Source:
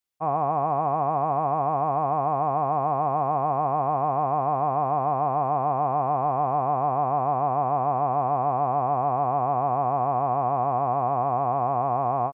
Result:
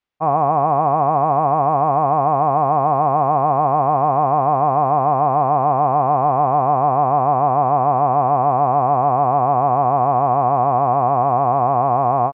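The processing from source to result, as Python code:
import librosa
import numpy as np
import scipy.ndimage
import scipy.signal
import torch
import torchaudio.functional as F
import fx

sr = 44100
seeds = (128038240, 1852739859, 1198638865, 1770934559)

y = scipy.signal.sosfilt(scipy.signal.butter(2, 2800.0, 'lowpass', fs=sr, output='sos'), x)
y = F.gain(torch.from_numpy(y), 8.0).numpy()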